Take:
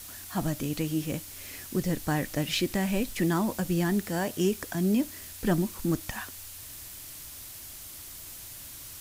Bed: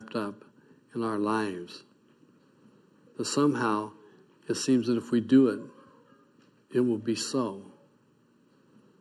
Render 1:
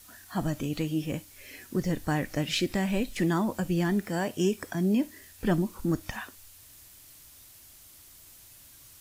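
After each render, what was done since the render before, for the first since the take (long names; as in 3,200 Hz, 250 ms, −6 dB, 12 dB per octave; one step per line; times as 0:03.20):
noise reduction from a noise print 9 dB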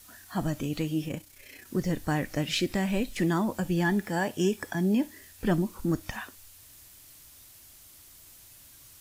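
0:01.08–0:01.67: amplitude modulation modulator 31 Hz, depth 40%
0:03.63–0:05.13: hollow resonant body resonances 860/1,700/3,400 Hz, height 9 dB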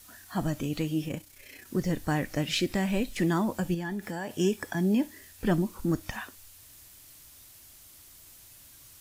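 0:03.74–0:04.33: downward compressor, threshold −30 dBFS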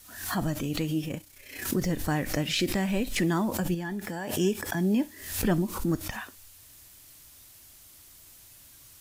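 background raised ahead of every attack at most 79 dB per second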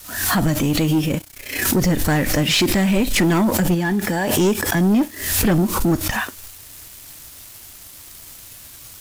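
in parallel at −2.5 dB: downward compressor, threshold −34 dBFS, peak gain reduction 14.5 dB
on the sum: leveller curve on the samples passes 3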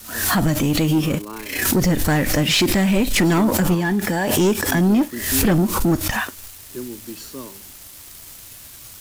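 mix in bed −6.5 dB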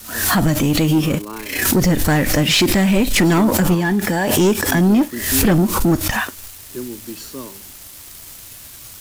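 level +2.5 dB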